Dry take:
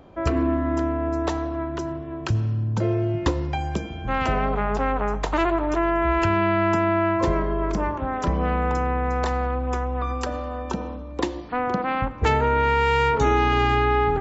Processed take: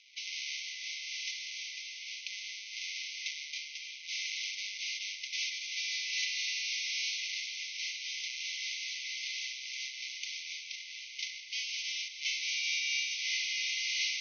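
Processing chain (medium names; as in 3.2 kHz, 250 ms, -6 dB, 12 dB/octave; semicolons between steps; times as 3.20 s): square wave that keeps the level; dynamic bell 2.7 kHz, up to -5 dB, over -36 dBFS, Q 1.2; saturation -18 dBFS, distortion -14 dB; echo that smears into a reverb 1006 ms, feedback 43%, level -10 dB; reverberation RT60 5.8 s, pre-delay 67 ms, DRR 8 dB; FFT band-pass 2–6.4 kHz; random flutter of the level, depth 55%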